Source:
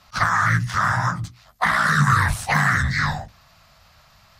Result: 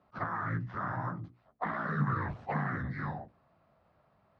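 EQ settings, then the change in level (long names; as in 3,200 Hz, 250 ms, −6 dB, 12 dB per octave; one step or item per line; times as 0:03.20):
resonant band-pass 360 Hz, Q 1.8
high-frequency loss of the air 200 metres
0.0 dB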